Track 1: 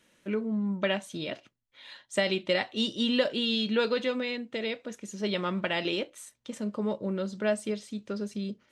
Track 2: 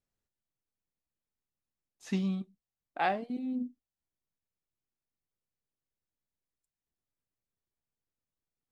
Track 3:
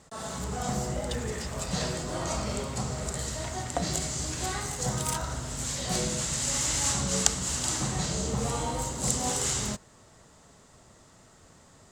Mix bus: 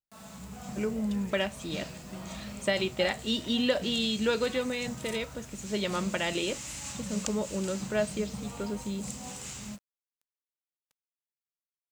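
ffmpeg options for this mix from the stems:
-filter_complex "[0:a]adelay=500,volume=-1dB[a];[1:a]volume=-13dB[b];[2:a]equalizer=f=200:t=o:w=0.33:g=11,equalizer=f=400:t=o:w=0.33:g=-6,equalizer=f=2.5k:t=o:w=0.33:g=9,acrusher=bits=6:mix=0:aa=0.000001,volume=-13dB[c];[a][b][c]amix=inputs=3:normalize=0"

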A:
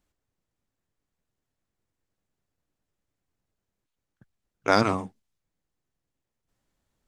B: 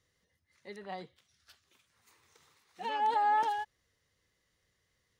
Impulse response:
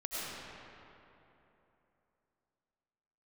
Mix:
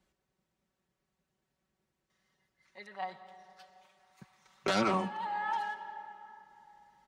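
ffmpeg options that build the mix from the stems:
-filter_complex "[0:a]acrossover=split=240|2300|5000[a][b][c][d];[a]acompressor=threshold=-42dB:ratio=4[e];[b]acompressor=threshold=-24dB:ratio=4[f];[c]acompressor=threshold=-36dB:ratio=4[g];[d]acompressor=threshold=-49dB:ratio=4[h];[e][f][g][h]amix=inputs=4:normalize=0,aeval=exprs='0.282*sin(PI/2*3.16*val(0)/0.282)':c=same,volume=-12dB,asplit=3[i][j][k];[j]volume=-23.5dB[l];[1:a]lowshelf=f=560:t=q:w=1.5:g=-10,adelay=2100,volume=-2dB,asplit=2[m][n];[n]volume=-14dB[o];[k]apad=whole_len=321559[p];[m][p]sidechaincompress=threshold=-40dB:ratio=8:attack=16:release=815[q];[2:a]atrim=start_sample=2205[r];[l][o]amix=inputs=2:normalize=0[s];[s][r]afir=irnorm=-1:irlink=0[t];[i][q][t]amix=inputs=3:normalize=0,highpass=60,highshelf=f=7.9k:g=-11,aecho=1:1:5.3:0.75"

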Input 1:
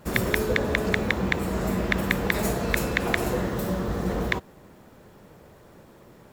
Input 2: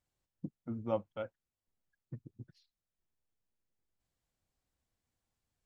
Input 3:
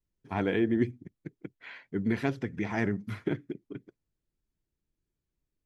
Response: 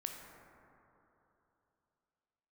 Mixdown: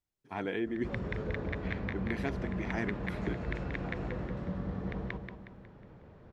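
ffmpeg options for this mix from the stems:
-filter_complex "[0:a]lowpass=f=6.3k:w=0.5412,lowpass=f=6.3k:w=1.3066,bass=f=250:g=7,treble=f=4k:g=-15,adelay=600,volume=-7.5dB,asplit=2[a][b];[b]volume=-7.5dB[c];[1:a]volume=-9dB[d];[2:a]lowshelf=f=200:g=-9.5,volume=-4.5dB,asplit=2[e][f];[f]apad=whole_len=305391[g];[a][g]sidechaincompress=threshold=-49dB:ratio=8:attack=16:release=893[h];[h][d]amix=inputs=2:normalize=0,acompressor=threshold=-41dB:ratio=6,volume=0dB[i];[c]aecho=0:1:182|364|546|728|910|1092:1|0.44|0.194|0.0852|0.0375|0.0165[j];[e][i][j]amix=inputs=3:normalize=0"

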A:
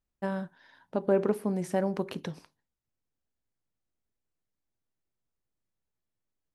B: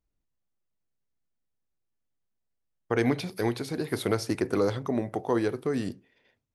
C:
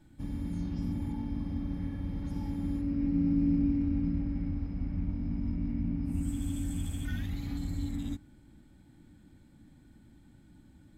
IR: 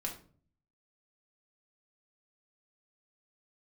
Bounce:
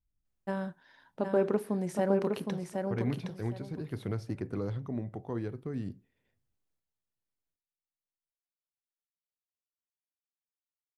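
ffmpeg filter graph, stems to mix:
-filter_complex "[0:a]adelay=250,volume=-2dB,asplit=2[a][b];[b]volume=-4.5dB[c];[1:a]bass=f=250:g=14,treble=f=4k:g=-7,volume=-14dB[d];[c]aecho=0:1:765|1530|2295:1|0.2|0.04[e];[a][d][e]amix=inputs=3:normalize=0"

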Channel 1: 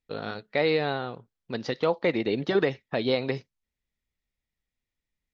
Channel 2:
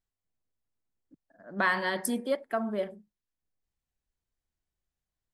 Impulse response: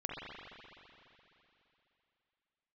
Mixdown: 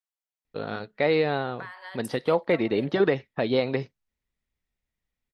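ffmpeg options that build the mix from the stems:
-filter_complex "[0:a]highshelf=f=4.8k:g=-11,adelay=450,volume=2dB[a];[1:a]highpass=f=650:w=0.5412,highpass=f=650:w=1.3066,acompressor=threshold=-33dB:ratio=10,volume=-4.5dB[b];[a][b]amix=inputs=2:normalize=0"

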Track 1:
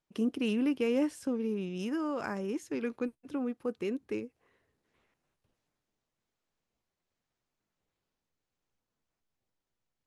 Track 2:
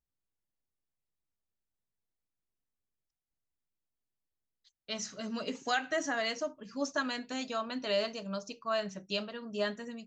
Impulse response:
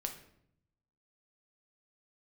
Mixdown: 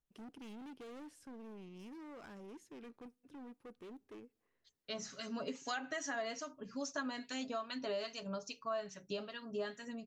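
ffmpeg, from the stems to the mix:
-filter_complex "[0:a]volume=34.5dB,asoftclip=hard,volume=-34.5dB,volume=-14.5dB,asplit=2[a][b];[b]volume=-24dB[c];[1:a]aecho=1:1:7.3:0.4,acrossover=split=1300[d][e];[d]aeval=exprs='val(0)*(1-0.7/2+0.7/2*cos(2*PI*2.4*n/s))':c=same[f];[e]aeval=exprs='val(0)*(1-0.7/2-0.7/2*cos(2*PI*2.4*n/s))':c=same[g];[f][g]amix=inputs=2:normalize=0,volume=1dB[h];[2:a]atrim=start_sample=2205[i];[c][i]afir=irnorm=-1:irlink=0[j];[a][h][j]amix=inputs=3:normalize=0,acompressor=threshold=-39dB:ratio=2.5"

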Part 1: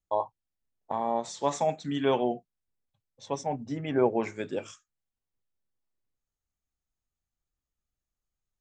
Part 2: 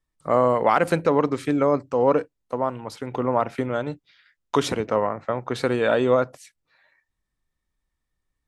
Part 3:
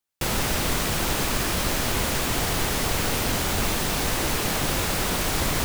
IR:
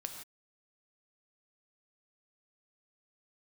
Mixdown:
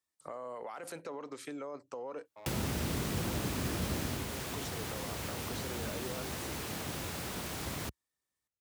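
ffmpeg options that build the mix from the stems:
-filter_complex "[0:a]asoftclip=type=tanh:threshold=-29dB,alimiter=level_in=15dB:limit=-24dB:level=0:latency=1,volume=-15dB,adelay=2250,volume=-8.5dB[a];[1:a]bass=f=250:g=-13,treble=f=4k:g=8,alimiter=limit=-17dB:level=0:latency=1:release=11,acompressor=threshold=-37dB:ratio=2.5,volume=-6.5dB[b];[2:a]adelay=2250,volume=-4.5dB,afade=t=out:st=4.03:d=0.24:silence=0.421697[c];[a][b][c]amix=inputs=3:normalize=0,highpass=f=61:w=0.5412,highpass=f=61:w=1.3066,acrossover=split=380[d][e];[e]acompressor=threshold=-38dB:ratio=6[f];[d][f]amix=inputs=2:normalize=0"

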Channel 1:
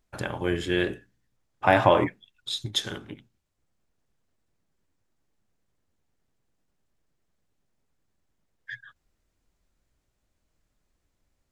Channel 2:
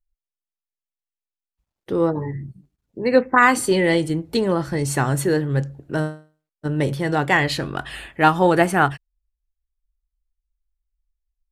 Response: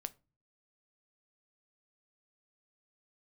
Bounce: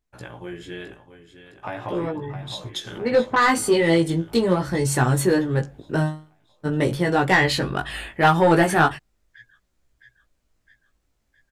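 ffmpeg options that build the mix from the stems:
-filter_complex "[0:a]acompressor=threshold=-23dB:ratio=6,volume=-4dB,asplit=2[a][b];[b]volume=-11.5dB[c];[1:a]asoftclip=type=tanh:threshold=-10dB,volume=-4.5dB[d];[c]aecho=0:1:662|1324|1986|2648|3310|3972|4634|5296:1|0.55|0.303|0.166|0.0915|0.0503|0.0277|0.0152[e];[a][d][e]amix=inputs=3:normalize=0,dynaudnorm=f=610:g=9:m=10dB,flanger=delay=16:depth=2.5:speed=0.4"

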